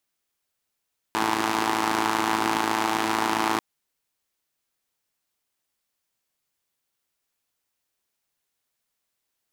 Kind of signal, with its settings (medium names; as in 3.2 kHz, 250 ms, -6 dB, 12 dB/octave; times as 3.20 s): four-cylinder engine model, steady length 2.44 s, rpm 3300, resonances 330/870 Hz